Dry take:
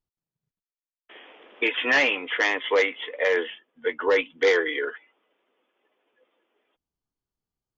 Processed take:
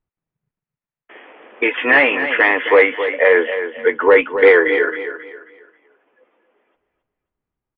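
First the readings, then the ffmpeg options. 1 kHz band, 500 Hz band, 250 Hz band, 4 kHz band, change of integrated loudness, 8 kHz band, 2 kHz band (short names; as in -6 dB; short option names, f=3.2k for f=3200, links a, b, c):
+10.5 dB, +10.5 dB, +10.5 dB, +0.5 dB, +9.5 dB, n/a, +9.0 dB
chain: -filter_complex "[0:a]lowpass=f=2.4k:w=0.5412,lowpass=f=2.4k:w=1.3066,dynaudnorm=f=430:g=9:m=3.5dB,asplit=2[a][b];[b]aecho=0:1:268|536|804|1072:0.316|0.101|0.0324|0.0104[c];[a][c]amix=inputs=2:normalize=0,volume=7dB"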